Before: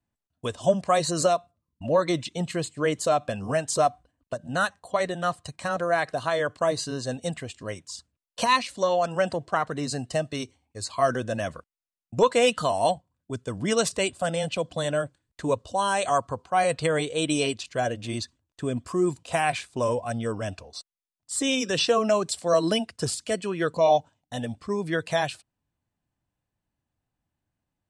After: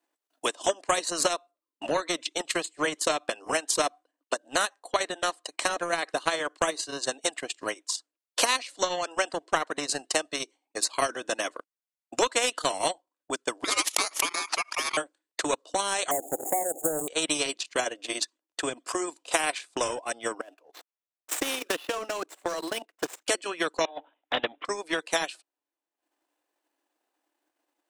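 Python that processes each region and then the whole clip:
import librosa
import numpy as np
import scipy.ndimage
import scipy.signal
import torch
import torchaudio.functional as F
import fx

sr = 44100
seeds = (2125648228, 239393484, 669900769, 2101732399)

y = fx.chain(x, sr, fx.cheby1_bandpass(low_hz=480.0, high_hz=9900.0, order=3),
    fx.ring_mod(carrier_hz=1700.0),
    fx.pre_swell(db_per_s=150.0), at=(13.64, 14.97))
y = fx.chain(y, sr, fx.zero_step(step_db=-24.5),
    fx.brickwall_bandstop(low_hz=830.0, high_hz=6600.0), at=(16.11, 17.08))
y = fx.chain(y, sr, fx.median_filter(points=9),
    fx.level_steps(step_db=14), at=(20.41, 23.28))
y = fx.chain(y, sr, fx.over_compress(threshold_db=-28.0, ratio=-1.0),
    fx.resample_bad(factor=6, down='none', up='filtered'), at=(23.85, 24.65))
y = scipy.signal.sosfilt(scipy.signal.ellip(4, 1.0, 40, 300.0, 'highpass', fs=sr, output='sos'), y)
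y = fx.transient(y, sr, attack_db=10, sustain_db=-12)
y = fx.spectral_comp(y, sr, ratio=2.0)
y = y * librosa.db_to_amplitude(-5.5)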